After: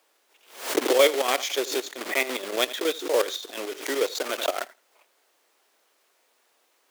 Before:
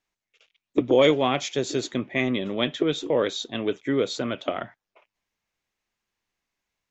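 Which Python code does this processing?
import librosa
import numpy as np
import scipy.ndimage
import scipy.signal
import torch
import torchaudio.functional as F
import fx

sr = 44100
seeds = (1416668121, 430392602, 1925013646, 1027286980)

p1 = fx.block_float(x, sr, bits=3)
p2 = fx.chopper(p1, sr, hz=7.0, depth_pct=65, duty_pct=55)
p3 = fx.vibrato(p2, sr, rate_hz=0.5, depth_cents=44.0)
p4 = fx.dmg_noise_colour(p3, sr, seeds[0], colour='pink', level_db=-66.0)
p5 = scipy.signal.sosfilt(scipy.signal.butter(4, 380.0, 'highpass', fs=sr, output='sos'), p4)
p6 = p5 + fx.echo_feedback(p5, sr, ms=82, feedback_pct=16, wet_db=-21.5, dry=0)
p7 = fx.pre_swell(p6, sr, db_per_s=120.0)
y = p7 * librosa.db_to_amplitude(1.5)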